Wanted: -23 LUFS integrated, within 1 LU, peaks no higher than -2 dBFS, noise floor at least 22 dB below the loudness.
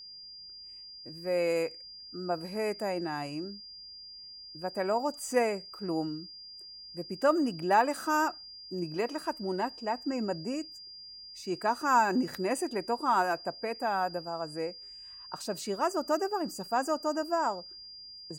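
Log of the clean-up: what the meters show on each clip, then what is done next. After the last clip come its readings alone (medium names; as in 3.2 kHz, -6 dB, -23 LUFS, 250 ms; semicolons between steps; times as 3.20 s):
steady tone 4.8 kHz; tone level -45 dBFS; loudness -31.5 LUFS; peak level -12.0 dBFS; loudness target -23.0 LUFS
-> band-stop 4.8 kHz, Q 30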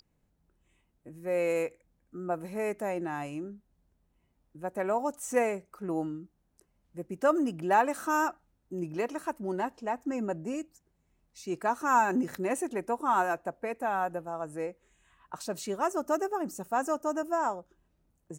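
steady tone not found; loudness -31.5 LUFS; peak level -12.5 dBFS; loudness target -23.0 LUFS
-> trim +8.5 dB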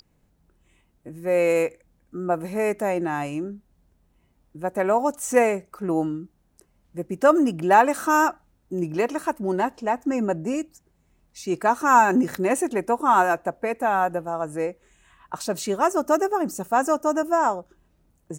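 loudness -23.0 LUFS; peak level -4.0 dBFS; noise floor -65 dBFS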